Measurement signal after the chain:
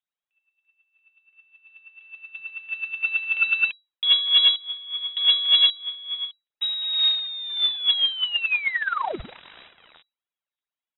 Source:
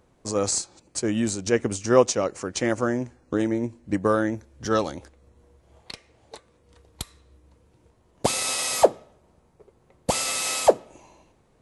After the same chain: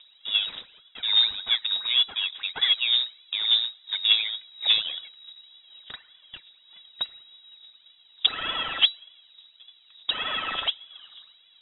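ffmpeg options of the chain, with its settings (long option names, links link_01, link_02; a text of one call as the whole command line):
ffmpeg -i in.wav -af "equalizer=frequency=570:width=5.8:gain=6.5,acompressor=threshold=-23dB:ratio=3,aphaser=in_gain=1:out_gain=1:delay=2.2:decay=0.7:speed=1.7:type=triangular,aresample=16000,acrusher=bits=4:mode=log:mix=0:aa=0.000001,aresample=44100,aeval=exprs='0.631*(cos(1*acos(clip(val(0)/0.631,-1,1)))-cos(1*PI/2))+0.0158*(cos(4*acos(clip(val(0)/0.631,-1,1)))-cos(4*PI/2))':channel_layout=same,aeval=exprs='clip(val(0),-1,0.178)':channel_layout=same,lowpass=frequency=3300:width_type=q:width=0.5098,lowpass=frequency=3300:width_type=q:width=0.6013,lowpass=frequency=3300:width_type=q:width=0.9,lowpass=frequency=3300:width_type=q:width=2.563,afreqshift=-3900" out.wav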